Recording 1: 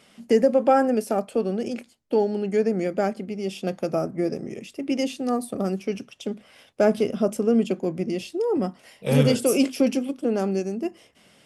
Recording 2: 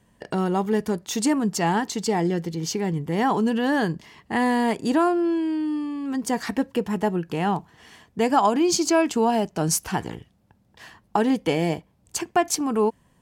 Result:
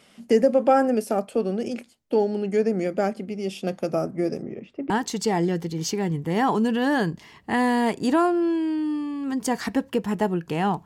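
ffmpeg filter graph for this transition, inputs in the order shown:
-filter_complex "[0:a]asettb=1/sr,asplit=3[a][b][c];[a]atrim=end=4.424[d];[b]atrim=start=4.42:end=4.9,asetpts=PTS-STARTPTS,afade=t=in:d=0.004:c=qsin,afade=t=out:st=0.476:d=0.004:c=qsin,lowpass=1.7k[e];[c]atrim=start=4.896[f];[d][e]acrossfade=d=0.004:c1=hsin:c2=qsin[g];[g][f]acrossfade=d=0.004:c1=qsin:c2=hsin,apad=whole_dur=10.85,atrim=end=10.85,atrim=end=4.902[h];[1:a]atrim=start=1.718:end=7.67[i];[h][i]acrossfade=d=0.004:c1=hsin:c2=hsin"

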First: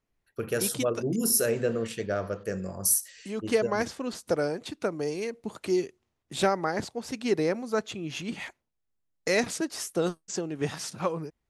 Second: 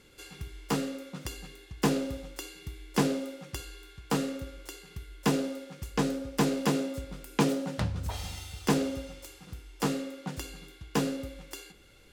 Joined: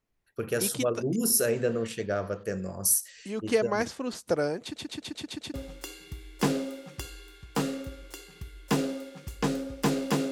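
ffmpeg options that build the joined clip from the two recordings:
-filter_complex "[0:a]apad=whole_dur=10.31,atrim=end=10.31,asplit=7[a][b][c][d][e][f][g];[a]atrim=end=4.762[h];[b]atrim=start=4.628:end=4.762[i];[c]atrim=start=4.628:end=4.762[j];[d]atrim=start=4.628:end=4.762[k];[e]atrim=start=4.628:end=4.762[l];[f]atrim=start=4.628:end=4.762[m];[g]atrim=start=4.628:end=4.762[n];[1:a]atrim=start=2.088:end=6.86[o];[h][i]acrossfade=d=0.004:c1=hsin:c2=hsin[p];[p][j]acrossfade=d=0.004:c1=hsin:c2=hsin[q];[q][k]acrossfade=d=0.004:c1=hsin:c2=hsin[r];[r][l]acrossfade=d=0.004:c1=hsin:c2=hsin[s];[s][m]acrossfade=d=0.004:c1=hsin:c2=hsin[t];[t][n]acrossfade=d=0.004:c1=hsin:c2=hsin[u];[u][o]acrossfade=d=0.004:c1=hsin:c2=hsin"

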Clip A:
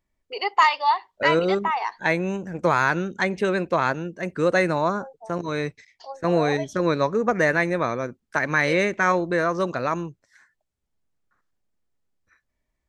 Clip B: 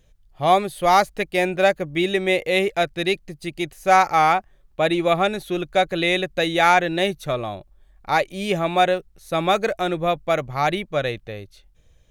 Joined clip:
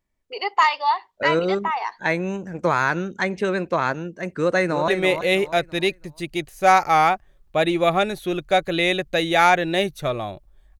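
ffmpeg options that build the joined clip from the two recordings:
-filter_complex "[0:a]apad=whole_dur=10.79,atrim=end=10.79,atrim=end=4.882[a];[1:a]atrim=start=2.118:end=8.03[b];[a][b]acrossfade=d=0.004:c1=hsin:c2=hsin,asplit=2[c][d];[d]afade=t=in:st=4.36:d=0.01,afade=t=out:st=4.88:d=0.01,aecho=0:1:330|660|990|1320:0.398107|0.139338|0.0487681|0.0170688[e];[c][e]amix=inputs=2:normalize=0"

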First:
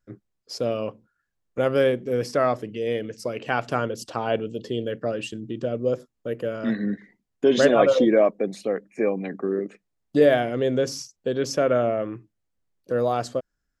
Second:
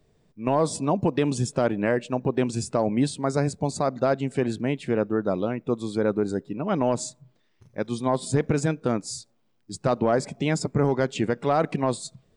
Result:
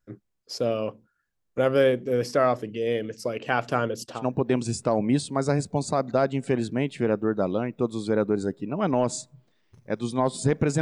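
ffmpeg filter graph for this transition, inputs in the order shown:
-filter_complex "[0:a]asettb=1/sr,asplit=3[a][b][c];[a]atrim=end=3.384[d];[b]atrim=start=3.38:end=4.26,asetpts=PTS-STARTPTS,afade=t=in:d=0.004:c=qsin,afade=t=out:st=0.876:d=0.004:c=qsin,agate=range=-33dB:threshold=-42dB:ratio=3:release=100:detection=peak[e];[c]atrim=start=4.256[f];[d][e]acrossfade=d=0.004:c1=hsin:c2=qsin[g];[g][f]acrossfade=d=0.004:c1=qsin:c2=hsin,apad=whole_dur=10.81,atrim=end=10.81,atrim=end=4.26,asetpts=PTS-STARTPTS[h];[1:a]atrim=start=1.96:end=8.69,asetpts=PTS-STARTPTS[i];[h][i]acrossfade=d=0.18:c1=tri:c2=tri"

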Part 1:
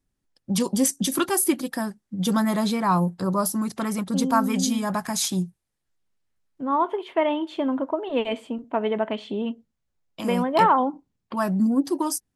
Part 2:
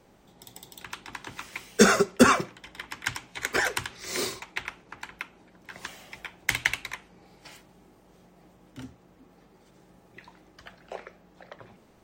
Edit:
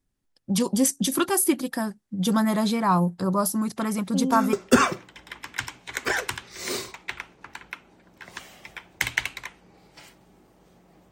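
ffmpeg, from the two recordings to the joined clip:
-filter_complex "[1:a]asplit=2[a][b];[0:a]apad=whole_dur=11.11,atrim=end=11.11,atrim=end=4.532[c];[b]atrim=start=2.008:end=8.59[d];[a]atrim=start=1.43:end=2.01,asetpts=PTS-STARTPTS,volume=-18dB,afade=t=in:d=0.004:c=hsin,afade=t=out:st=0.576:d=0.004:c=hsin,adelay=3950[e];[c][d]acrossfade=d=0.004:c1=hsin:c2=hsin[f];[f][e]amix=inputs=2:normalize=0"

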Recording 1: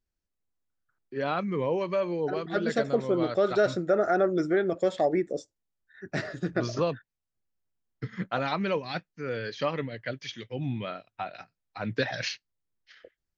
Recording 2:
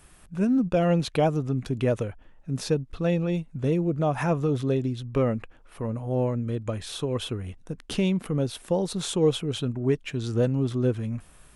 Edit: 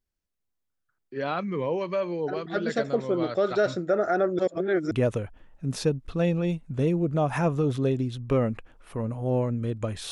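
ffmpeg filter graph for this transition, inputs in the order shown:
-filter_complex "[0:a]apad=whole_dur=10.11,atrim=end=10.11,asplit=2[a][b];[a]atrim=end=4.392[c];[b]atrim=start=4.388:end=4.912,asetpts=PTS-STARTPTS,areverse[d];[1:a]atrim=start=1.758:end=6.96[e];[c][d]acrossfade=d=0.004:c1=hsin:c2=hsin[f];[f][e]acrossfade=d=0.004:c1=hsin:c2=hsin"

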